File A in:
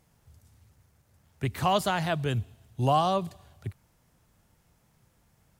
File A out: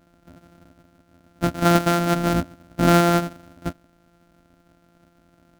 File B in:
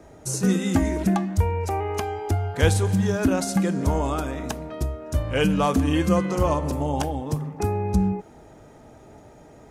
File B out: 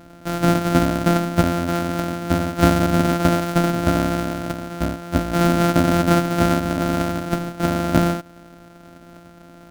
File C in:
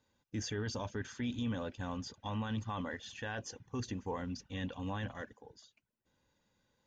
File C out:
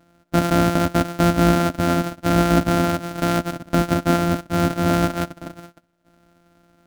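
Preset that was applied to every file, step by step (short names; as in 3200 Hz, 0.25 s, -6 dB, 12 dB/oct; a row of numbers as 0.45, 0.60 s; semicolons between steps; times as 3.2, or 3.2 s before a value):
sample sorter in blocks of 256 samples; small resonant body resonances 270/630/1400 Hz, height 15 dB, ringing for 50 ms; match loudness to -20 LUFS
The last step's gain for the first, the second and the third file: +3.5, -0.5, +16.0 dB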